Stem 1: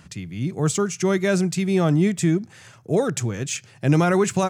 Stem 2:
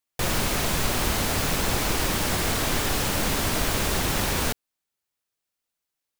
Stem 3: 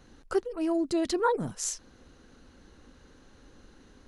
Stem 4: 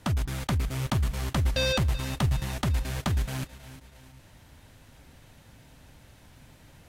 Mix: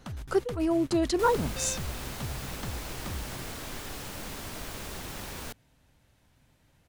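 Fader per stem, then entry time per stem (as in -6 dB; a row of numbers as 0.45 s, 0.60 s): mute, -14.5 dB, +1.5 dB, -12.0 dB; mute, 1.00 s, 0.00 s, 0.00 s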